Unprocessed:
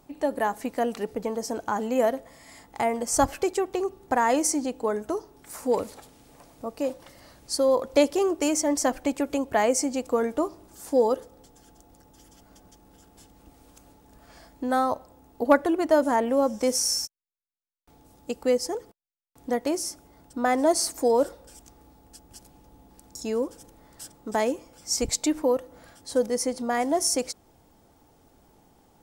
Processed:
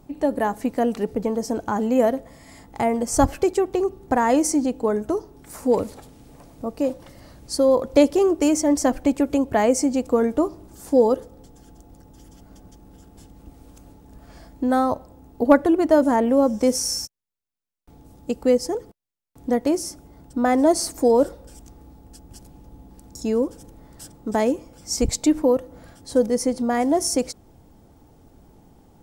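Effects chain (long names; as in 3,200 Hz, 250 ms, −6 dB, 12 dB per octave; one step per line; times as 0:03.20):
low-shelf EQ 400 Hz +11 dB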